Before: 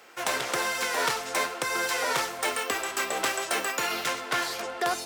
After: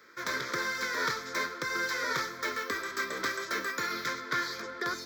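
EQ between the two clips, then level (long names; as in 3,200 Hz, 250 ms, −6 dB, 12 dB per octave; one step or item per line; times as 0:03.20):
high-pass filter 53 Hz
high-shelf EQ 4,300 Hz −6 dB
phaser with its sweep stopped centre 2,800 Hz, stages 6
0.0 dB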